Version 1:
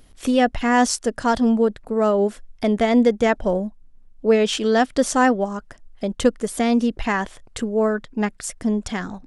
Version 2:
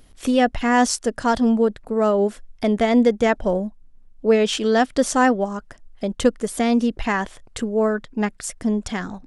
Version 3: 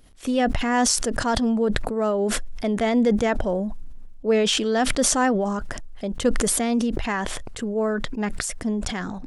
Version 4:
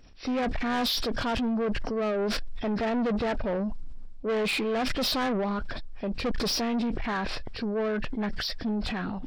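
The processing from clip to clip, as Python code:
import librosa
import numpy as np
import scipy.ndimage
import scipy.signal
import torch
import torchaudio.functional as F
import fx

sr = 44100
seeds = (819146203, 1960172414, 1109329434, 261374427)

y1 = x
y2 = fx.sustainer(y1, sr, db_per_s=24.0)
y2 = y2 * 10.0 ** (-4.5 / 20.0)
y3 = fx.freq_compress(y2, sr, knee_hz=1500.0, ratio=1.5)
y3 = 10.0 ** (-24.5 / 20.0) * np.tanh(y3 / 10.0 ** (-24.5 / 20.0))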